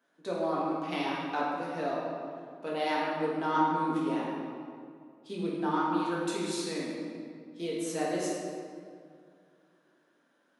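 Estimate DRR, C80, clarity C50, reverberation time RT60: −6.5 dB, 0.5 dB, −1.5 dB, 2.2 s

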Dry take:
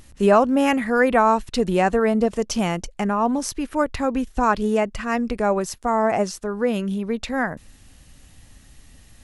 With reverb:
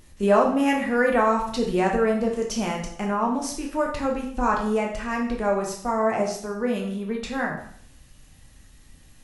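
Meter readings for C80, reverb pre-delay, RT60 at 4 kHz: 10.0 dB, 5 ms, 0.60 s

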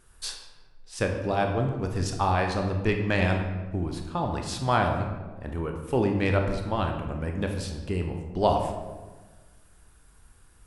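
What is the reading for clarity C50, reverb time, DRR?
5.5 dB, 1.3 s, 3.0 dB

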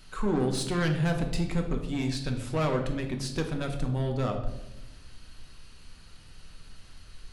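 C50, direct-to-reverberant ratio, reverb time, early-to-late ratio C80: 7.5 dB, 3.0 dB, 0.90 s, 10.0 dB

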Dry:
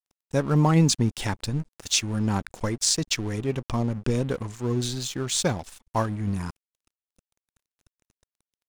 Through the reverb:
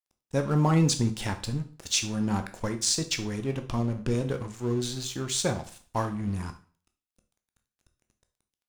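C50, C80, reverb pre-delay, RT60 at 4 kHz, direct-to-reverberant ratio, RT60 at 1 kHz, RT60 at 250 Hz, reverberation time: 13.0 dB, 17.5 dB, 6 ms, 0.40 s, 6.5 dB, 0.40 s, 0.45 s, 0.45 s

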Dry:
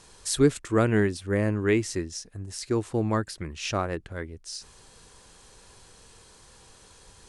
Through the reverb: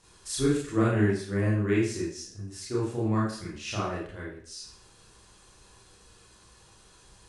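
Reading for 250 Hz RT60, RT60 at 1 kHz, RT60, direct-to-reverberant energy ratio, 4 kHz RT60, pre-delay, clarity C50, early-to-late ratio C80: 0.55 s, 0.55 s, 0.50 s, −7.0 dB, 0.50 s, 27 ms, 3.0 dB, 7.0 dB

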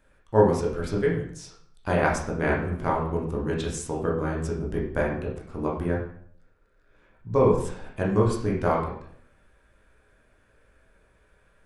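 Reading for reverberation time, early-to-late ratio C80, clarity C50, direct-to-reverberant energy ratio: 0.60 s, 8.5 dB, 4.5 dB, −4.0 dB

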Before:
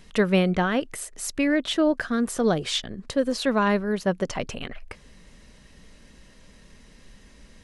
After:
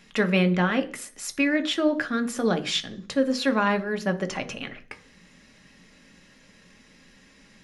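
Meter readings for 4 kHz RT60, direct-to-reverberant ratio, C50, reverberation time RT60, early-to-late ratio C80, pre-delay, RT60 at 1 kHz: 0.50 s, 7.0 dB, 17.0 dB, 0.40 s, 21.5 dB, 3 ms, 0.40 s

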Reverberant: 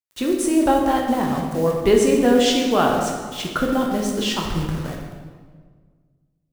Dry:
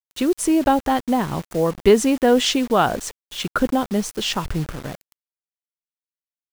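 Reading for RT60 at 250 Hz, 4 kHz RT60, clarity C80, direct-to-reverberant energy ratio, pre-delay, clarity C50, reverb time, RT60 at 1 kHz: 1.9 s, 1.2 s, 4.5 dB, −0.5 dB, 9 ms, 2.5 dB, 1.6 s, 1.5 s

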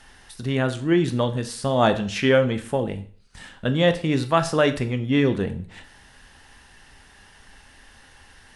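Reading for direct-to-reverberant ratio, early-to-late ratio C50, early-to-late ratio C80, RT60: 8.5 dB, 13.5 dB, 17.5 dB, 0.45 s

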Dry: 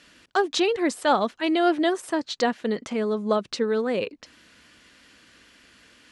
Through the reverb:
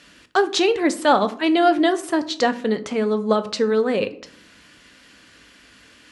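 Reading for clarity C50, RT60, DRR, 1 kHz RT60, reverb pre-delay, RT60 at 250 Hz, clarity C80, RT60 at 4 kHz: 16.5 dB, 0.60 s, 10.0 dB, 0.50 s, 7 ms, 0.90 s, 20.0 dB, 0.30 s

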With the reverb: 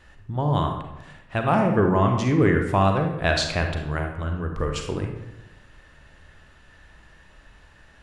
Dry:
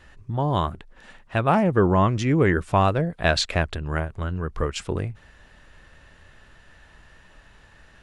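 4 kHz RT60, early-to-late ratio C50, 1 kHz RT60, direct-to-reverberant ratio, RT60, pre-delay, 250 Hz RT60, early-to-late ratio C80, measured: 0.60 s, 5.0 dB, 0.90 s, 3.5 dB, 0.95 s, 34 ms, 1.1 s, 8.0 dB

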